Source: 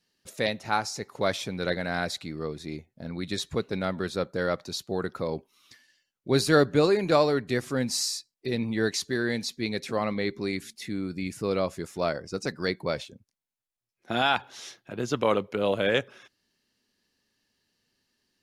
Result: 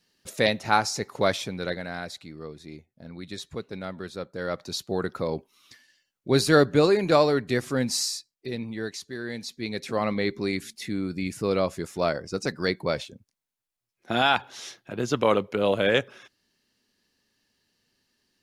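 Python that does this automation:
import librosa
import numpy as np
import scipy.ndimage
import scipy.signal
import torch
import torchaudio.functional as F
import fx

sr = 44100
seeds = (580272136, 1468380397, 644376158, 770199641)

y = fx.gain(x, sr, db=fx.line((1.12, 5.0), (2.02, -6.0), (4.32, -6.0), (4.74, 2.0), (7.93, 2.0), (9.06, -8.5), (10.08, 2.5)))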